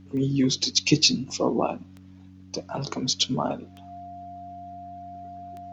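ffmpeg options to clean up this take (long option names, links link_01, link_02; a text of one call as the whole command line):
ffmpeg -i in.wav -af "adeclick=threshold=4,bandreject=frequency=93.6:width_type=h:width=4,bandreject=frequency=187.2:width_type=h:width=4,bandreject=frequency=280.8:width_type=h:width=4,bandreject=frequency=700:width=30" out.wav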